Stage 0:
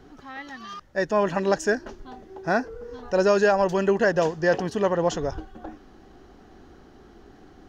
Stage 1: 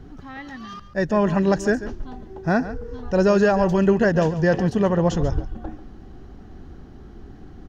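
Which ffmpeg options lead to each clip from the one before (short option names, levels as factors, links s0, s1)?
-af "bass=f=250:g=13,treble=f=4000:g=-2,aecho=1:1:140:0.2"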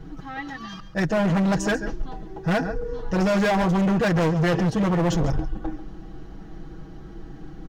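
-af "aecho=1:1:6.2:0.95,volume=8.41,asoftclip=hard,volume=0.119"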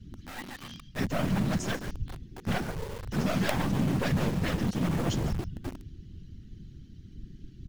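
-filter_complex "[0:a]equalizer=f=3100:t=o:w=0.83:g=3,afftfilt=real='hypot(re,im)*cos(2*PI*random(0))':imag='hypot(re,im)*sin(2*PI*random(1))':win_size=512:overlap=0.75,acrossover=split=290|2300[s0][s1][s2];[s1]acrusher=bits=4:dc=4:mix=0:aa=0.000001[s3];[s0][s3][s2]amix=inputs=3:normalize=0"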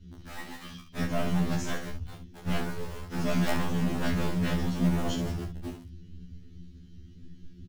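-filter_complex "[0:a]asplit=2[s0][s1];[s1]aecho=0:1:28|67:0.562|0.355[s2];[s0][s2]amix=inputs=2:normalize=0,afftfilt=real='re*2*eq(mod(b,4),0)':imag='im*2*eq(mod(b,4),0)':win_size=2048:overlap=0.75"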